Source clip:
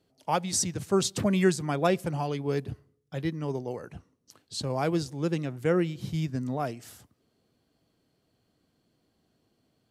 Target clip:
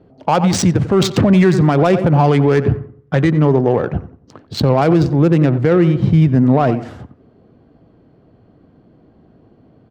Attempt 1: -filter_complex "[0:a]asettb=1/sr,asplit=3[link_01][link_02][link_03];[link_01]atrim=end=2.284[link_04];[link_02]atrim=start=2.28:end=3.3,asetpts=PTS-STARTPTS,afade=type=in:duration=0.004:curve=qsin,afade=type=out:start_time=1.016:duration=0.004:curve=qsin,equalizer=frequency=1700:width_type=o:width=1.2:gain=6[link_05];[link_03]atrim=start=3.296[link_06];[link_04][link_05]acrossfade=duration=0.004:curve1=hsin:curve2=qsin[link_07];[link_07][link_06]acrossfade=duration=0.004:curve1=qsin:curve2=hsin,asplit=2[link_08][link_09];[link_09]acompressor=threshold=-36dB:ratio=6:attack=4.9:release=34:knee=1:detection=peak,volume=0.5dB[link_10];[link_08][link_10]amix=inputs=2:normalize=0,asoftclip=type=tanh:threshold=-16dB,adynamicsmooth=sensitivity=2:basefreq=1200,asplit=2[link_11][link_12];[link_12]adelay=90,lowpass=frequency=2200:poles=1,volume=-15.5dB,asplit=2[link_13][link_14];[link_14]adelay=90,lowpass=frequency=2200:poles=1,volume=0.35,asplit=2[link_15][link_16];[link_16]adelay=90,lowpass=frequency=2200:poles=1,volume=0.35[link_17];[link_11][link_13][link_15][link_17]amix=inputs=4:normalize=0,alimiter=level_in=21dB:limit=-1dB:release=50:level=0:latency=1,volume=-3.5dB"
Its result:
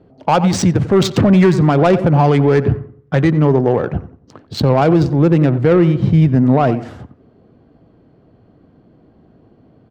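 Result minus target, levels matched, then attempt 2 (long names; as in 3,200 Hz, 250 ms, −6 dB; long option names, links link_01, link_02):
soft clipping: distortion +12 dB
-filter_complex "[0:a]asettb=1/sr,asplit=3[link_01][link_02][link_03];[link_01]atrim=end=2.284[link_04];[link_02]atrim=start=2.28:end=3.3,asetpts=PTS-STARTPTS,afade=type=in:duration=0.004:curve=qsin,afade=type=out:start_time=1.016:duration=0.004:curve=qsin,equalizer=frequency=1700:width_type=o:width=1.2:gain=6[link_05];[link_03]atrim=start=3.296[link_06];[link_04][link_05]acrossfade=duration=0.004:curve1=hsin:curve2=qsin[link_07];[link_07][link_06]acrossfade=duration=0.004:curve1=qsin:curve2=hsin,asplit=2[link_08][link_09];[link_09]acompressor=threshold=-36dB:ratio=6:attack=4.9:release=34:knee=1:detection=peak,volume=0.5dB[link_10];[link_08][link_10]amix=inputs=2:normalize=0,asoftclip=type=tanh:threshold=-8.5dB,adynamicsmooth=sensitivity=2:basefreq=1200,asplit=2[link_11][link_12];[link_12]adelay=90,lowpass=frequency=2200:poles=1,volume=-15.5dB,asplit=2[link_13][link_14];[link_14]adelay=90,lowpass=frequency=2200:poles=1,volume=0.35,asplit=2[link_15][link_16];[link_16]adelay=90,lowpass=frequency=2200:poles=1,volume=0.35[link_17];[link_11][link_13][link_15][link_17]amix=inputs=4:normalize=0,alimiter=level_in=21dB:limit=-1dB:release=50:level=0:latency=1,volume=-3.5dB"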